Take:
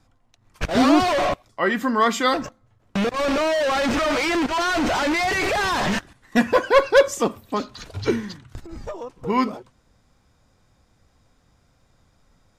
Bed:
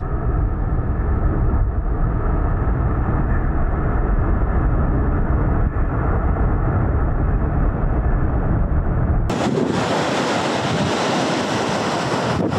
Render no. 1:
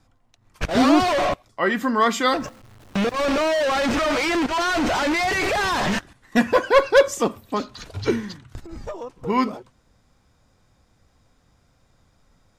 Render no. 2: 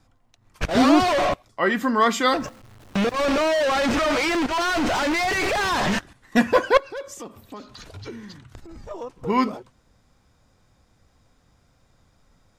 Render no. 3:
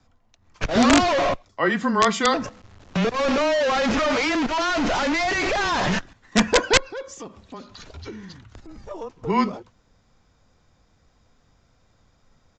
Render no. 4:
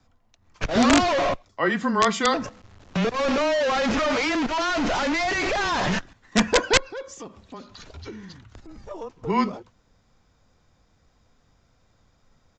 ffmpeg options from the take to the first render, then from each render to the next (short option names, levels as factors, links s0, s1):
-filter_complex "[0:a]asettb=1/sr,asplit=3[s0][s1][s2];[s0]atrim=end=2.404[s3];[s1]atrim=start=2.4:end=3.65,asetpts=PTS-STARTPTS,afade=t=in:d=0.004:c=qsin,afade=t=out:st=1.246:d=0.004:c=qsin,aeval=exprs='val(0)+0.5*0.00668*sgn(val(0))':c=same[s4];[s2]atrim=start=3.646[s5];[s3][s4]acrossfade=d=0.004:c1=hsin:c2=qsin[s6];[s6][s5]acrossfade=d=0.004:c1=qsin:c2=hsin"
-filter_complex "[0:a]asettb=1/sr,asplit=3[s0][s1][s2];[s0]atrim=end=4.294[s3];[s1]atrim=start=4.29:end=5.71,asetpts=PTS-STARTPTS,afade=t=in:d=0.004:c=qsin,afade=t=out:st=1.416:d=0.004:c=qsin,aeval=exprs='clip(val(0),-1,0.075)':c=same[s4];[s2]atrim=start=5.706[s5];[s3][s4]acrossfade=d=0.004:c1=hsin:c2=qsin[s6];[s6][s5]acrossfade=d=0.004:c1=qsin:c2=hsin,asettb=1/sr,asplit=3[s7][s8][s9];[s7]atrim=end=6.774[s10];[s8]atrim=start=6.77:end=8.91,asetpts=PTS-STARTPTS,afade=t=in:d=0.004:c=qsin,afade=t=out:st=2.136:d=0.004:c=qsin,acompressor=threshold=0.0126:ratio=3:attack=3.2:release=140:knee=1:detection=peak[s11];[s9]atrim=start=8.906[s12];[s10][s11]acrossfade=d=0.004:c1=hsin:c2=qsin[s13];[s13][s12]acrossfade=d=0.004:c1=qsin:c2=hsin"
-af "afreqshift=-17,aresample=16000,aeval=exprs='(mod(2.37*val(0)+1,2)-1)/2.37':c=same,aresample=44100"
-af "volume=0.841"